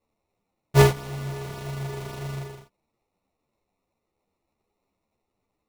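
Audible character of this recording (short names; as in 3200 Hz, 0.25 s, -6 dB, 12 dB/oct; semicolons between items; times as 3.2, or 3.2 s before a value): aliases and images of a low sample rate 1600 Hz, jitter 0%; a shimmering, thickened sound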